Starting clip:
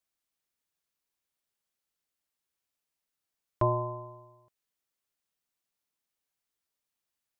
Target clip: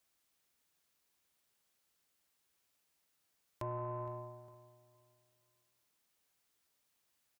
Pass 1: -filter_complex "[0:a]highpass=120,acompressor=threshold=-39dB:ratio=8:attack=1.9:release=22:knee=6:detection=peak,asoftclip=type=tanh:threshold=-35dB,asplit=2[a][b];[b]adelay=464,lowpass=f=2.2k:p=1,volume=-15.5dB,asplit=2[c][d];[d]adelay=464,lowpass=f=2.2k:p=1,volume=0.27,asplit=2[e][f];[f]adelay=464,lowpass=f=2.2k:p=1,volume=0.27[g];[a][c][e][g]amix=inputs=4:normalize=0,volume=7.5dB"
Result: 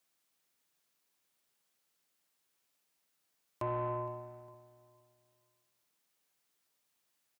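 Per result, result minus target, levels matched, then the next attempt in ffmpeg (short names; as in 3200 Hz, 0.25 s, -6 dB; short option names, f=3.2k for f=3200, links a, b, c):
compressor: peak gain reduction -6.5 dB; 125 Hz band -3.0 dB
-filter_complex "[0:a]highpass=120,acompressor=threshold=-46dB:ratio=8:attack=1.9:release=22:knee=6:detection=peak,asoftclip=type=tanh:threshold=-35dB,asplit=2[a][b];[b]adelay=464,lowpass=f=2.2k:p=1,volume=-15.5dB,asplit=2[c][d];[d]adelay=464,lowpass=f=2.2k:p=1,volume=0.27,asplit=2[e][f];[f]adelay=464,lowpass=f=2.2k:p=1,volume=0.27[g];[a][c][e][g]amix=inputs=4:normalize=0,volume=7.5dB"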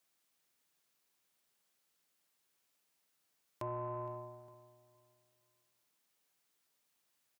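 125 Hz band -2.5 dB
-filter_complex "[0:a]highpass=39,acompressor=threshold=-46dB:ratio=8:attack=1.9:release=22:knee=6:detection=peak,asoftclip=type=tanh:threshold=-35dB,asplit=2[a][b];[b]adelay=464,lowpass=f=2.2k:p=1,volume=-15.5dB,asplit=2[c][d];[d]adelay=464,lowpass=f=2.2k:p=1,volume=0.27,asplit=2[e][f];[f]adelay=464,lowpass=f=2.2k:p=1,volume=0.27[g];[a][c][e][g]amix=inputs=4:normalize=0,volume=7.5dB"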